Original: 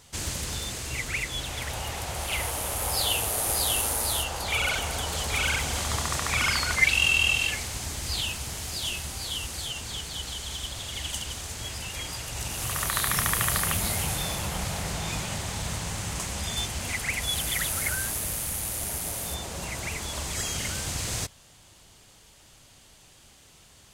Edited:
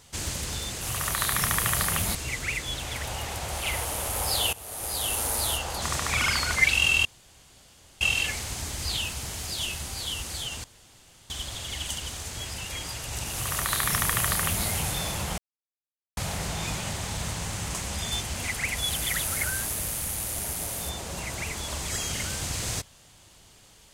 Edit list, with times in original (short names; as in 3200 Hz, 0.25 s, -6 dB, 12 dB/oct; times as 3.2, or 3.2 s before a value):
3.19–3.97 fade in, from -19 dB
4.48–6.02 cut
7.25 insert room tone 0.96 s
9.88–10.54 room tone
12.56–13.9 copy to 0.81
14.62 insert silence 0.79 s